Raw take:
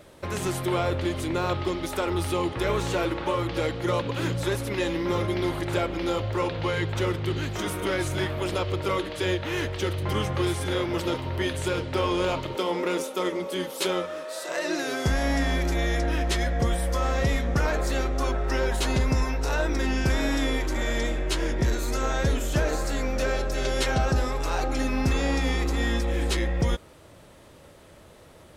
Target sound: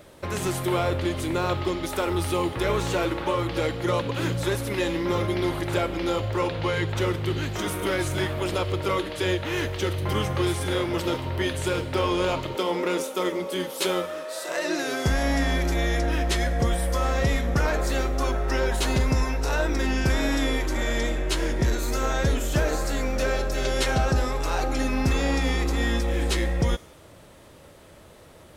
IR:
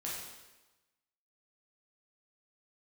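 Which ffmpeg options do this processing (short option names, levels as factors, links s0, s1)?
-filter_complex "[0:a]asplit=2[s0][s1];[s1]aemphasis=mode=production:type=riaa[s2];[1:a]atrim=start_sample=2205[s3];[s2][s3]afir=irnorm=-1:irlink=0,volume=0.0708[s4];[s0][s4]amix=inputs=2:normalize=0,volume=1.12"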